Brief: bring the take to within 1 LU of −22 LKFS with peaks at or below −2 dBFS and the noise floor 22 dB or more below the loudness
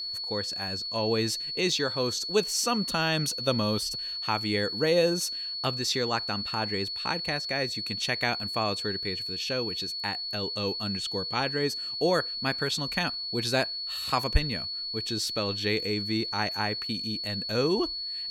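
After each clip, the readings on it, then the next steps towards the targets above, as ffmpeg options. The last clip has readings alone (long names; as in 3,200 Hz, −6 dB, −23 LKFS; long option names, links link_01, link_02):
interfering tone 4,400 Hz; level of the tone −32 dBFS; integrated loudness −28.0 LKFS; sample peak −8.0 dBFS; target loudness −22.0 LKFS
→ -af "bandreject=frequency=4400:width=30"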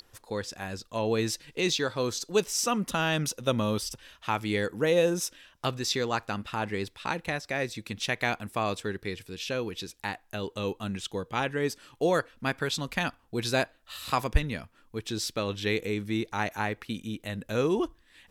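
interfering tone none found; integrated loudness −30.5 LKFS; sample peak −8.5 dBFS; target loudness −22.0 LKFS
→ -af "volume=8.5dB,alimiter=limit=-2dB:level=0:latency=1"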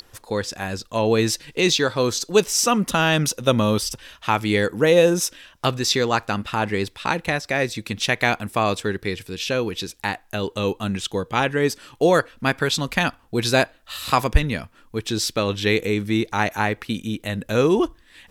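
integrated loudness −22.0 LKFS; sample peak −2.0 dBFS; background noise floor −54 dBFS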